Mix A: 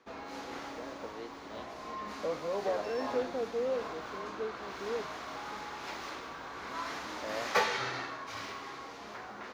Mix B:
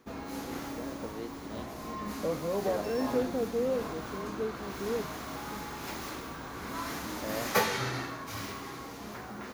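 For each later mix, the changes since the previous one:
master: remove three-way crossover with the lows and the highs turned down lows −12 dB, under 400 Hz, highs −20 dB, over 6,100 Hz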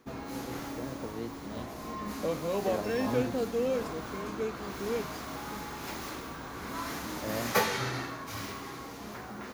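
first voice: remove high-pass filter 290 Hz 12 dB per octave
second voice: remove low-pass filter 1,200 Hz

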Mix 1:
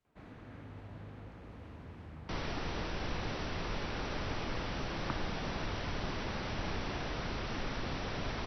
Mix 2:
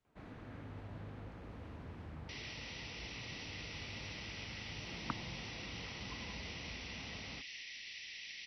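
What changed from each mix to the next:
second sound: add Chebyshev high-pass with heavy ripple 1,900 Hz, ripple 3 dB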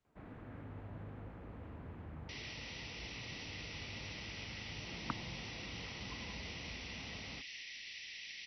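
first sound: add Gaussian smoothing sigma 2.7 samples

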